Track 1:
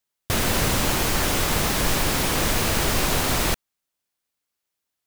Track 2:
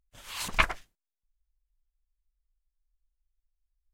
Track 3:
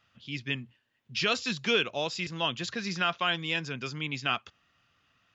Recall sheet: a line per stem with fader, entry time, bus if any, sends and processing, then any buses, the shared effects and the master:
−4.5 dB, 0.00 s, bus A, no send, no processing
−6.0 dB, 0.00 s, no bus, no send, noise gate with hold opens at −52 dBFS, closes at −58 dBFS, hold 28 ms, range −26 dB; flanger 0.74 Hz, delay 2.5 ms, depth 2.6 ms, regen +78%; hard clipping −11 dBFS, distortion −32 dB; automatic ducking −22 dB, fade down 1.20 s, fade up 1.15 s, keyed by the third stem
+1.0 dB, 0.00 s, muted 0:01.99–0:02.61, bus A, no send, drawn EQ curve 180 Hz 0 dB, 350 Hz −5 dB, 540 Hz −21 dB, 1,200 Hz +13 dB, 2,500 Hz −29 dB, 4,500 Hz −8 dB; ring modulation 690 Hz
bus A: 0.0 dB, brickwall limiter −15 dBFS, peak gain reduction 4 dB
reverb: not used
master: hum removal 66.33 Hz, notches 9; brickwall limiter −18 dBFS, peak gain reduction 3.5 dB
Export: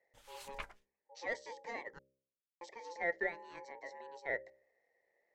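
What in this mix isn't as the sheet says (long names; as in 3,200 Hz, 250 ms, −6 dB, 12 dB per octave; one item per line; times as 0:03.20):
stem 1: muted
stem 3 +1.0 dB → −9.0 dB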